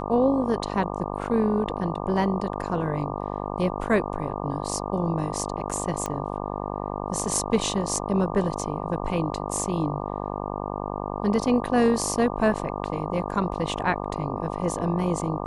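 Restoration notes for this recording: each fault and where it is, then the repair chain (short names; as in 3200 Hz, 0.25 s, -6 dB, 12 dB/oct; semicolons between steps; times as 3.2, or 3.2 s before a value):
buzz 50 Hz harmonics 24 -31 dBFS
6.06 pop -14 dBFS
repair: de-click; de-hum 50 Hz, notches 24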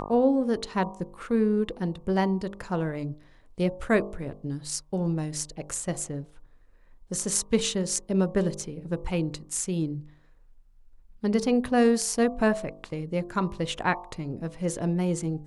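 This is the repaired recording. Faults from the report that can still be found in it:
none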